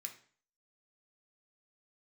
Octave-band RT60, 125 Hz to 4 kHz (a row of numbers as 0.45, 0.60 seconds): 0.50, 0.50, 0.45, 0.45, 0.45, 0.45 seconds